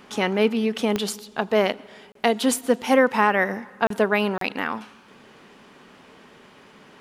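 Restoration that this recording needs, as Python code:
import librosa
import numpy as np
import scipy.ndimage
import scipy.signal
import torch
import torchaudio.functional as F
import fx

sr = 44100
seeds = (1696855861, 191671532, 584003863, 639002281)

y = fx.fix_declick_ar(x, sr, threshold=10.0)
y = fx.fix_interpolate(y, sr, at_s=(2.12, 3.87, 4.38), length_ms=33.0)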